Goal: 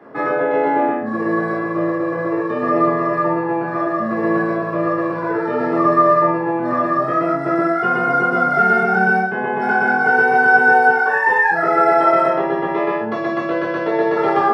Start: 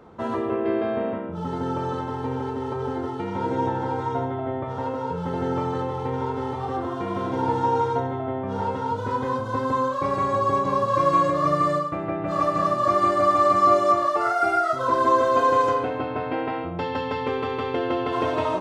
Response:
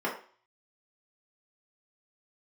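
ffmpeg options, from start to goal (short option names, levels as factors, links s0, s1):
-filter_complex "[0:a]asetrate=56448,aresample=44100[s0];[1:a]atrim=start_sample=2205,atrim=end_sample=3969[s1];[s0][s1]afir=irnorm=-1:irlink=0,volume=0.708"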